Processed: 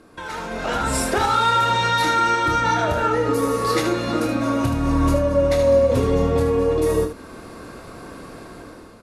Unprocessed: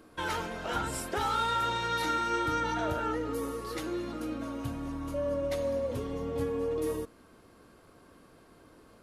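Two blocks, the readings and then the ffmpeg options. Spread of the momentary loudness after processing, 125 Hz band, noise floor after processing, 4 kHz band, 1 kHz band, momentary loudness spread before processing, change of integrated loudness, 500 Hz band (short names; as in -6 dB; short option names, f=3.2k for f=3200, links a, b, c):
21 LU, +15.5 dB, -41 dBFS, +11.5 dB, +12.0 dB, 8 LU, +13.0 dB, +13.5 dB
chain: -filter_complex "[0:a]alimiter=level_in=5.5dB:limit=-24dB:level=0:latency=1:release=401,volume=-5.5dB,lowpass=11k,asplit=2[a][b];[b]aecho=0:1:27|76:0.398|0.398[c];[a][c]amix=inputs=2:normalize=0,dynaudnorm=f=270:g=5:m=13dB,bandreject=f=3.1k:w=13,volume=5.5dB"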